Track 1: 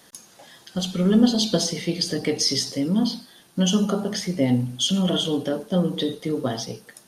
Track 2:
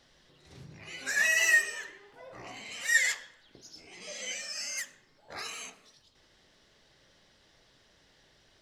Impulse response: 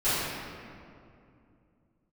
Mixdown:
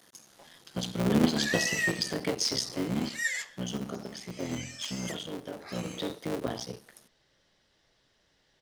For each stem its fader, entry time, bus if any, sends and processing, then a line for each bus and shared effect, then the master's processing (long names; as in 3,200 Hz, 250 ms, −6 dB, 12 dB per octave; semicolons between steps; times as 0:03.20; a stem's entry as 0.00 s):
0:02.81 −5.5 dB → 0:03.28 −13 dB → 0:05.82 −13 dB → 0:06.11 −6 dB, 0.00 s, no send, sub-harmonics by changed cycles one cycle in 3, muted; high-pass filter 79 Hz
−6.0 dB, 0.30 s, no send, no processing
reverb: not used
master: no processing